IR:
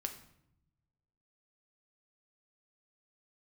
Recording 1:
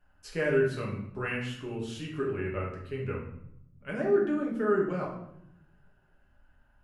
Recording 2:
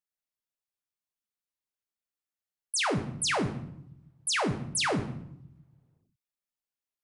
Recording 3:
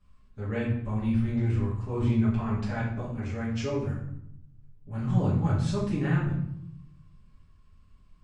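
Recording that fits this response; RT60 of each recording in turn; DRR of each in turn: 2; 0.75, 0.75, 0.75 s; -3.5, 5.0, -9.5 dB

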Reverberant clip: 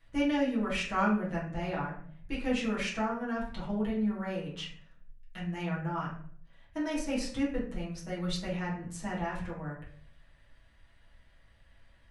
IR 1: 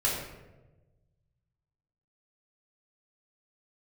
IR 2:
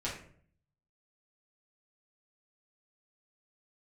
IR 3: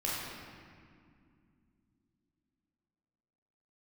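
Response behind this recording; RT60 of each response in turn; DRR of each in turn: 2; 1.1, 0.55, 2.3 s; -5.5, -7.5, -7.0 dB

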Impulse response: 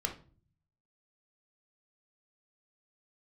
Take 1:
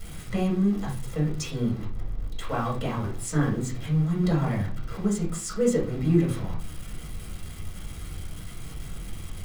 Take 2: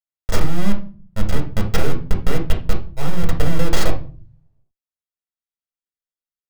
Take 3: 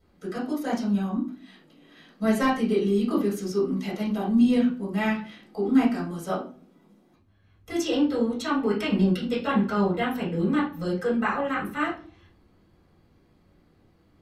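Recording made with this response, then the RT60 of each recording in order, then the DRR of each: 2; 0.40, 0.40, 0.40 s; -5.0, 2.0, -9.0 dB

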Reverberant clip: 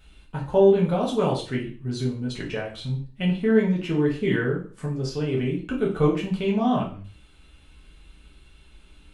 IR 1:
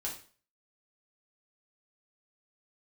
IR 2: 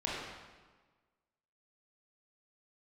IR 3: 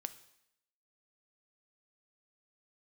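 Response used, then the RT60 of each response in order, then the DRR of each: 1; 0.40, 1.4, 0.80 s; -4.5, -6.5, 11.0 dB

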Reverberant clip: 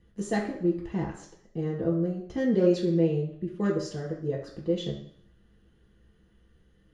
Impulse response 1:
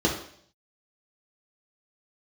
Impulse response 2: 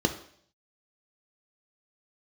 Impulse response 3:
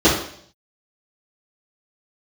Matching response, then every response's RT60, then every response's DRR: 1; 0.60, 0.60, 0.60 s; -3.0, 5.0, -12.5 dB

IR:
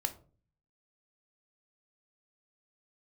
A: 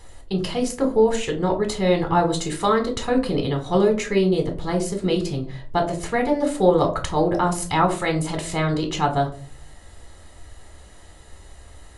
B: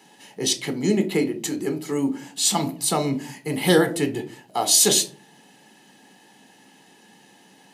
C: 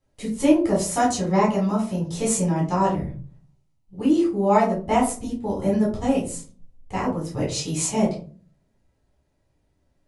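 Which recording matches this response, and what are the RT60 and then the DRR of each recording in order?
B; 0.40, 0.40, 0.40 s; 3.0, 7.0, -6.0 dB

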